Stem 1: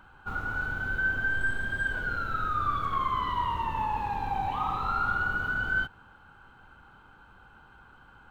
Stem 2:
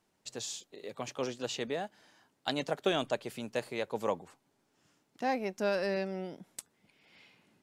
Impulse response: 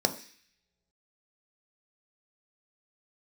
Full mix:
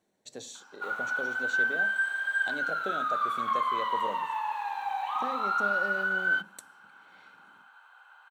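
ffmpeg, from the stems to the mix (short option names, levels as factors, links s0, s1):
-filter_complex "[0:a]highpass=f=800:w=0.5412,highpass=f=800:w=1.3066,adelay=550,volume=1.06,asplit=2[s0][s1];[s1]volume=0.0841[s2];[1:a]acompressor=threshold=0.0112:ratio=2.5,volume=0.531,asplit=2[s3][s4];[s4]volume=0.299[s5];[2:a]atrim=start_sample=2205[s6];[s2][s5]amix=inputs=2:normalize=0[s7];[s7][s6]afir=irnorm=-1:irlink=0[s8];[s0][s3][s8]amix=inputs=3:normalize=0"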